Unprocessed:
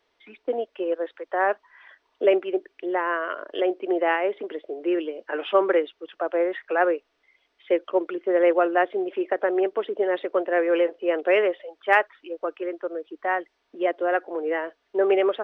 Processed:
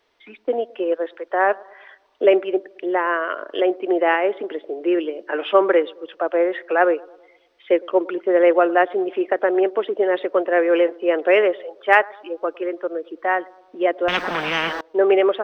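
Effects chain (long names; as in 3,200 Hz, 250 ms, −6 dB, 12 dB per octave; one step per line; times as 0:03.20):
bucket-brigade delay 108 ms, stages 1,024, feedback 51%, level −23 dB
0:14.08–0:14.81: every bin compressed towards the loudest bin 10 to 1
level +4.5 dB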